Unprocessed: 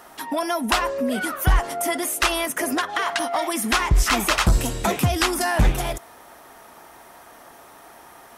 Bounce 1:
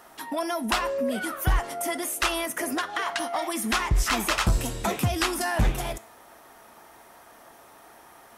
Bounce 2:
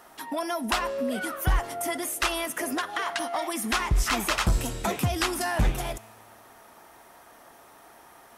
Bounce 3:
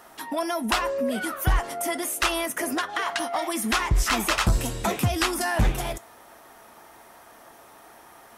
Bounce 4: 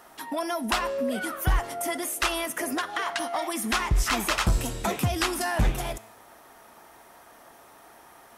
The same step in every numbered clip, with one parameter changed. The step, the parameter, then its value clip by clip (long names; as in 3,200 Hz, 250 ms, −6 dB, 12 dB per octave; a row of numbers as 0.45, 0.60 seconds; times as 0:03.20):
tuned comb filter, decay: 0.4, 2.1, 0.16, 0.94 seconds